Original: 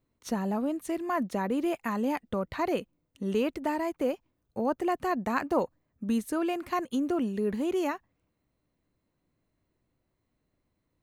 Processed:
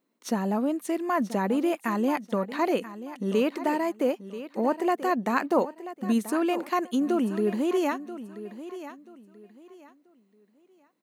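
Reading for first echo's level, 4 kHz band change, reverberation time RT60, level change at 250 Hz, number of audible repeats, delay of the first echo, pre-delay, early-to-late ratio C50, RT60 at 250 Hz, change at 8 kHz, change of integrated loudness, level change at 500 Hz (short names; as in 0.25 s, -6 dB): -13.5 dB, +3.5 dB, none, +3.5 dB, 2, 0.984 s, none, none, none, +3.5 dB, +3.5 dB, +3.5 dB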